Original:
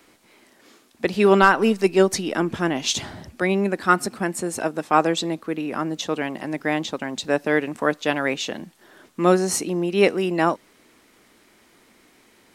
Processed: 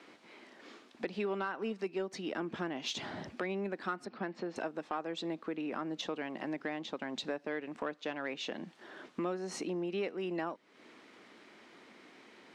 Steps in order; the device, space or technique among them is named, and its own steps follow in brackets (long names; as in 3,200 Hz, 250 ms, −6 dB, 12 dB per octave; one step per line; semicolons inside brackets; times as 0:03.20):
AM radio (band-pass filter 190–4,100 Hz; downward compressor 5 to 1, threshold −35 dBFS, peak gain reduction 22.5 dB; soft clipping −23 dBFS, distortion −24 dB)
0:04.05–0:04.56: elliptic band-pass filter 110–4,700 Hz